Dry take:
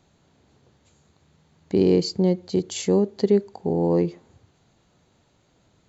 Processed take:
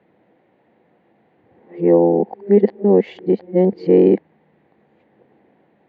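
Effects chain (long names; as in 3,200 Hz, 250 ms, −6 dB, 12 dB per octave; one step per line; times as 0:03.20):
played backwards from end to start
loudspeaker in its box 190–2,500 Hz, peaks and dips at 210 Hz +6 dB, 330 Hz +7 dB, 500 Hz +8 dB, 770 Hz +7 dB, 1,300 Hz −6 dB, 1,900 Hz +7 dB
level +2 dB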